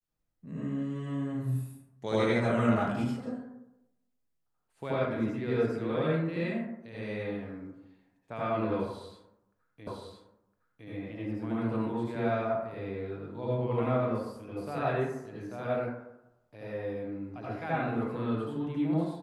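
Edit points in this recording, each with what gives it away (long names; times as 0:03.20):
0:09.87: the same again, the last 1.01 s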